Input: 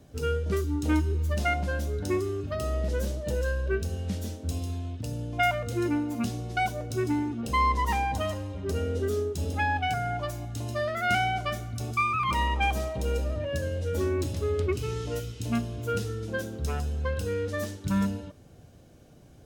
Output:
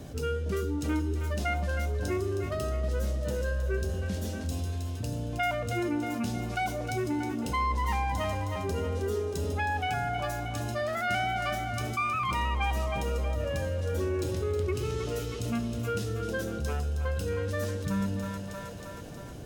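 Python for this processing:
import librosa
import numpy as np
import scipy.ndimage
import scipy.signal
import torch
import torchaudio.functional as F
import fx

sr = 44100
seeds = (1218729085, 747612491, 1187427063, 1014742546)

y = fx.echo_split(x, sr, split_hz=460.0, low_ms=123, high_ms=316, feedback_pct=52, wet_db=-9)
y = fx.env_flatten(y, sr, amount_pct=50)
y = y * 10.0 ** (-5.5 / 20.0)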